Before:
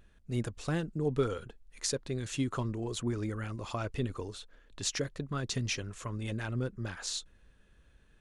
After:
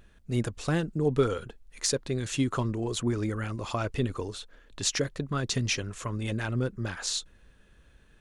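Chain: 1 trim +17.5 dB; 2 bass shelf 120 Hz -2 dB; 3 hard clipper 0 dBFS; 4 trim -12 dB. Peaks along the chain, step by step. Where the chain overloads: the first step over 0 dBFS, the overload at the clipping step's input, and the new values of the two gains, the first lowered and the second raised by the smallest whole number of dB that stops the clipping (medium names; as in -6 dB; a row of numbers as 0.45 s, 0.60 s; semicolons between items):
+4.0 dBFS, +4.0 dBFS, 0.0 dBFS, -12.0 dBFS; step 1, 4.0 dB; step 1 +13.5 dB, step 4 -8 dB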